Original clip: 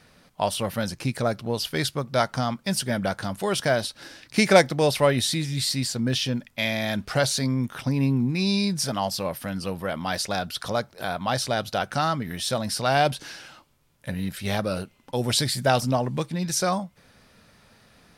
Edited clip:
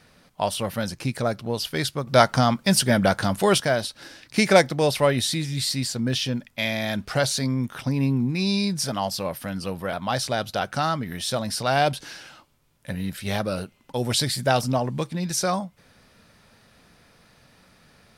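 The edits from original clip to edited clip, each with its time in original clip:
2.07–3.58 s: gain +6.5 dB
9.93–11.12 s: delete

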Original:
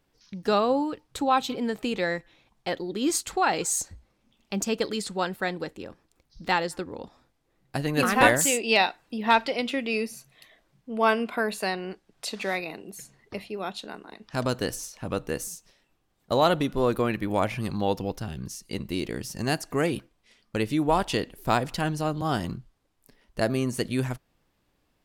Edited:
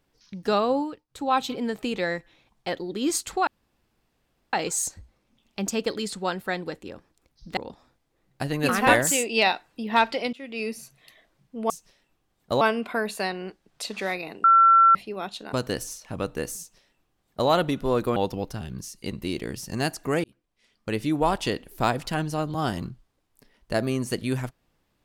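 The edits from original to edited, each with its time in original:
0.79–1.34 s: dip -19 dB, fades 0.27 s
3.47 s: insert room tone 1.06 s
6.51–6.91 s: delete
9.67–10.10 s: fade in, from -22 dB
12.87–13.38 s: bleep 1.35 kHz -12 dBFS
13.96–14.45 s: delete
15.50–16.41 s: copy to 11.04 s
17.08–17.83 s: delete
19.91–20.69 s: fade in

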